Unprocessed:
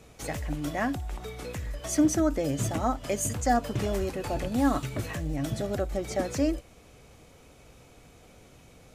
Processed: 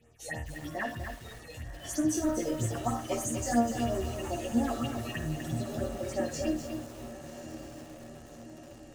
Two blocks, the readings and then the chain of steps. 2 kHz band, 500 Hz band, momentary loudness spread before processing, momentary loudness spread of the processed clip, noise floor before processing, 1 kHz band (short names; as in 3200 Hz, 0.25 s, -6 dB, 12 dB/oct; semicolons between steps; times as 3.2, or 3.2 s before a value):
-2.5 dB, -3.5 dB, 11 LU, 17 LU, -55 dBFS, -4.5 dB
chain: spectral noise reduction 8 dB; small resonant body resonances 1800/2800 Hz, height 12 dB, ringing for 20 ms; in parallel at -10 dB: soft clip -26.5 dBFS, distortion -8 dB; on the sum: resonator bank D#2 fifth, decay 0.38 s; de-hum 101.1 Hz, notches 5; phaser stages 4, 3.1 Hz, lowest notch 160–4600 Hz; on a send: diffused feedback echo 1.141 s, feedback 61%, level -12 dB; on the sum: lo-fi delay 0.248 s, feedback 35%, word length 9-bit, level -6 dB; gain +7.5 dB